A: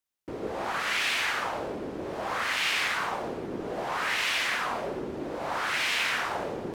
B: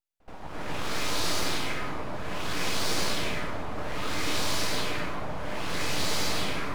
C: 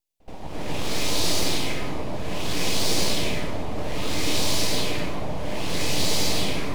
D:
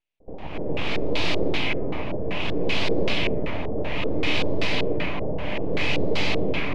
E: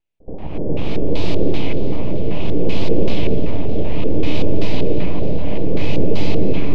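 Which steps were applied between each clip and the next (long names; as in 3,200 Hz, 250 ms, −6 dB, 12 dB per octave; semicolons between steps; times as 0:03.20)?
full-wave rectification; echo ahead of the sound 77 ms −21 dB; convolution reverb RT60 0.75 s, pre-delay 236 ms, DRR −6 dB; level −4 dB
parametric band 1,400 Hz −12 dB 0.99 octaves; level +6.5 dB
auto-filter low-pass square 2.6 Hz 480–2,600 Hz
tilt shelving filter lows +5.5 dB, about 640 Hz; echo machine with several playback heads 205 ms, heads all three, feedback 60%, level −19.5 dB; dynamic equaliser 1,700 Hz, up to −8 dB, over −47 dBFS, Q 0.92; level +3.5 dB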